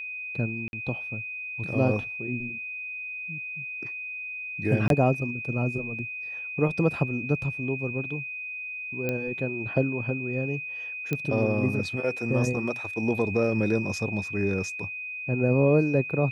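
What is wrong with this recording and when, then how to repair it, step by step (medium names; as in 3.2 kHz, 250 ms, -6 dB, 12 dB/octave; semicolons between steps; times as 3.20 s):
whine 2.5 kHz -33 dBFS
0.68–0.73 s: dropout 51 ms
4.88–4.90 s: dropout 22 ms
9.09 s: pop -15 dBFS
11.13 s: pop -14 dBFS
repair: de-click; band-stop 2.5 kHz, Q 30; interpolate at 0.68 s, 51 ms; interpolate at 4.88 s, 22 ms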